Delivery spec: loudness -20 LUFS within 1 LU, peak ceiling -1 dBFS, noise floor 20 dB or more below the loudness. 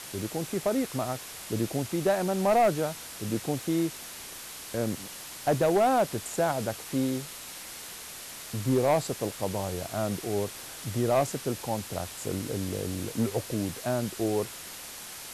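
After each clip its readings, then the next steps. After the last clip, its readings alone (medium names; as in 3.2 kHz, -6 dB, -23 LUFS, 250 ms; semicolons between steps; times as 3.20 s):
clipped samples 0.5%; clipping level -17.5 dBFS; noise floor -43 dBFS; noise floor target -50 dBFS; loudness -30.0 LUFS; peak level -17.5 dBFS; loudness target -20.0 LUFS
-> clip repair -17.5 dBFS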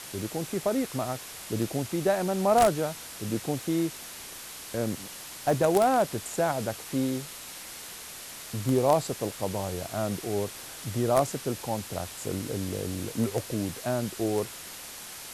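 clipped samples 0.0%; noise floor -43 dBFS; noise floor target -50 dBFS
-> noise reduction 7 dB, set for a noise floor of -43 dBFS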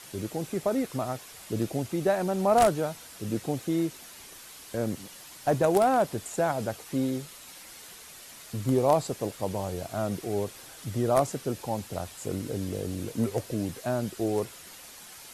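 noise floor -47 dBFS; noise floor target -49 dBFS
-> noise reduction 6 dB, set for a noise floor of -47 dBFS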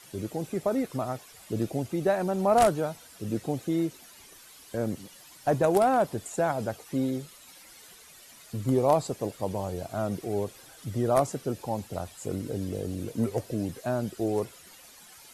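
noise floor -52 dBFS; loudness -29.0 LUFS; peak level -8.5 dBFS; loudness target -20.0 LUFS
-> trim +9 dB; peak limiter -1 dBFS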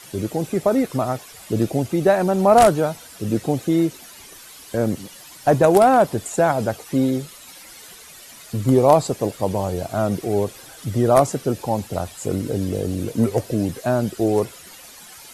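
loudness -20.5 LUFS; peak level -1.0 dBFS; noise floor -43 dBFS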